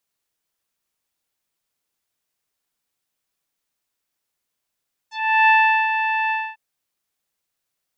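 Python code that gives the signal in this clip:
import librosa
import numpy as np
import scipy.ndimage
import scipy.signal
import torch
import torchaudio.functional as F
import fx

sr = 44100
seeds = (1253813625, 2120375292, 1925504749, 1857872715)

y = fx.sub_voice(sr, note=81, wave='saw', cutoff_hz=2500.0, q=2.6, env_oct=1.5, env_s=0.09, attack_ms=370.0, decay_s=0.4, sustain_db=-8, release_s=0.25, note_s=1.2, slope=24)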